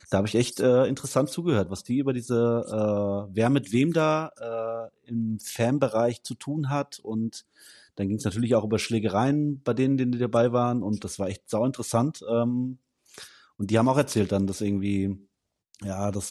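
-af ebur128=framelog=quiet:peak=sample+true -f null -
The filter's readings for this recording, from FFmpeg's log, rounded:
Integrated loudness:
  I:         -26.0 LUFS
  Threshold: -36.4 LUFS
Loudness range:
  LRA:         3.6 LU
  Threshold: -46.6 LUFS
  LRA low:   -28.7 LUFS
  LRA high:  -25.1 LUFS
Sample peak:
  Peak:       -8.5 dBFS
True peak:
  Peak:       -8.4 dBFS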